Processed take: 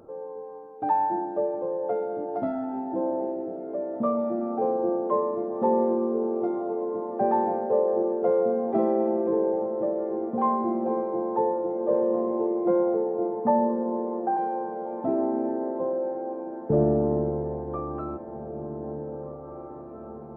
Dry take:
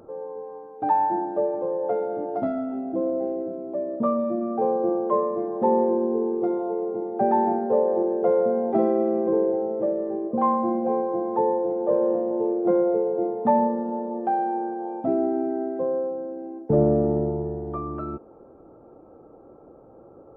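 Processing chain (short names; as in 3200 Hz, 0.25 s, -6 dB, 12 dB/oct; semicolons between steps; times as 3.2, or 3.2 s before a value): 12.94–14.37 LPF 1900 Hz 24 dB/oct; on a send: diffused feedback echo 1.884 s, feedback 61%, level -12 dB; on the sum: gain -2.5 dB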